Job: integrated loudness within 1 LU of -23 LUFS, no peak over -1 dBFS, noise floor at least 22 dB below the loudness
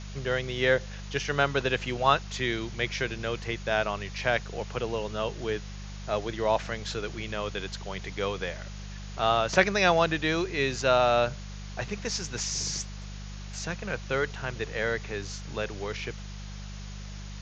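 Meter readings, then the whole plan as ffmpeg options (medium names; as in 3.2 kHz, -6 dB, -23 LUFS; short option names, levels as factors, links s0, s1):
hum 50 Hz; highest harmonic 200 Hz; hum level -37 dBFS; noise floor -40 dBFS; noise floor target -51 dBFS; loudness -29.0 LUFS; peak level -4.5 dBFS; loudness target -23.0 LUFS
-> -af "bandreject=f=50:t=h:w=4,bandreject=f=100:t=h:w=4,bandreject=f=150:t=h:w=4,bandreject=f=200:t=h:w=4"
-af "afftdn=nr=11:nf=-40"
-af "volume=2,alimiter=limit=0.891:level=0:latency=1"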